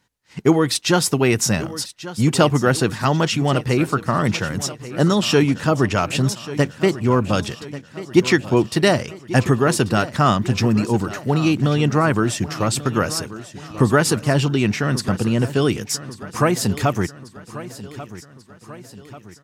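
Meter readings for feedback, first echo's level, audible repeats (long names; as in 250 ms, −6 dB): 52%, −15.5 dB, 4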